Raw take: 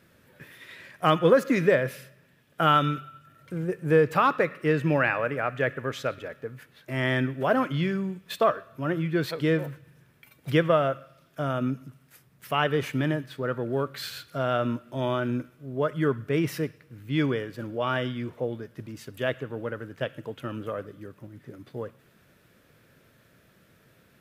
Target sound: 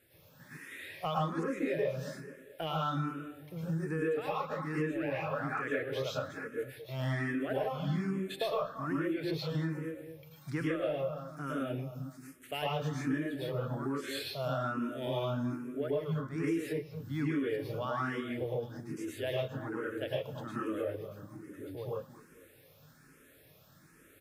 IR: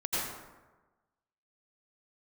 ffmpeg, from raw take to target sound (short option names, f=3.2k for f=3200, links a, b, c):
-filter_complex "[0:a]asplit=2[a][b];[b]asoftclip=type=tanh:threshold=-20.5dB,volume=-6.5dB[c];[a][c]amix=inputs=2:normalize=0,acrossover=split=8200[d][e];[e]acompressor=threshold=-58dB:ratio=4:attack=1:release=60[f];[d][f]amix=inputs=2:normalize=0,highshelf=f=6.3k:g=10,asplit=2[g][h];[h]adelay=222,lowpass=f=1.7k:p=1,volume=-13.5dB,asplit=2[i][j];[j]adelay=222,lowpass=f=1.7k:p=1,volume=0.32,asplit=2[k][l];[l]adelay=222,lowpass=f=1.7k:p=1,volume=0.32[m];[g][i][k][m]amix=inputs=4:normalize=0[n];[1:a]atrim=start_sample=2205,afade=t=out:st=0.18:d=0.01,atrim=end_sample=8379,asetrate=37044,aresample=44100[o];[n][o]afir=irnorm=-1:irlink=0,acompressor=threshold=-19dB:ratio=5,asplit=2[p][q];[q]afreqshift=1.2[r];[p][r]amix=inputs=2:normalize=1,volume=-9dB"